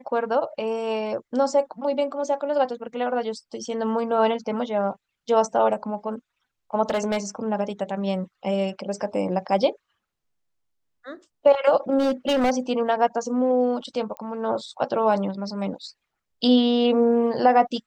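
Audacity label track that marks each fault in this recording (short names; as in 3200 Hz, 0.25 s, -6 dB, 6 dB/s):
6.900000	7.180000	clipped -19.5 dBFS
11.980000	12.510000	clipped -17 dBFS
14.170000	14.170000	pop -21 dBFS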